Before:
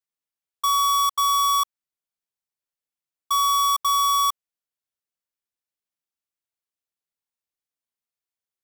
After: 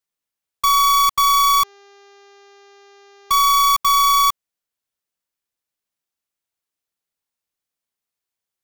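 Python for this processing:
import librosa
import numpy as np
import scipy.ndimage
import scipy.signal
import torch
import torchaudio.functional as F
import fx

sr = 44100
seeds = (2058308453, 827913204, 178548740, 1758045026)

y = fx.tracing_dist(x, sr, depth_ms=0.47)
y = fx.dmg_buzz(y, sr, base_hz=400.0, harmonics=17, level_db=-54.0, tilt_db=-5, odd_only=False, at=(1.52, 3.39), fade=0.02)
y = y * 10.0 ** (5.5 / 20.0)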